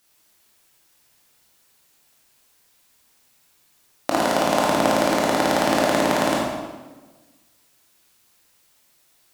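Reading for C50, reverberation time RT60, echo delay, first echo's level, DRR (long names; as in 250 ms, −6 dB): −0.5 dB, 1.3 s, no echo audible, no echo audible, −4.5 dB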